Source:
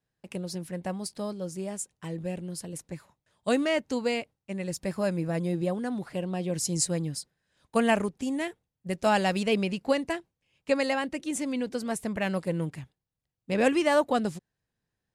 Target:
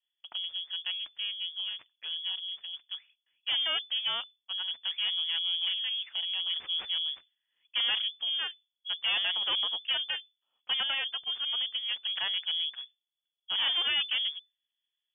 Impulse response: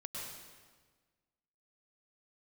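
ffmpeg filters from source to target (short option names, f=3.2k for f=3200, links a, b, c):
-af "adynamicsmooth=sensitivity=6.5:basefreq=1.5k,aeval=exprs='(tanh(17.8*val(0)+0.45)-tanh(0.45))/17.8':c=same,lowpass=f=3k:t=q:w=0.5098,lowpass=f=3k:t=q:w=0.6013,lowpass=f=3k:t=q:w=0.9,lowpass=f=3k:t=q:w=2.563,afreqshift=-3500"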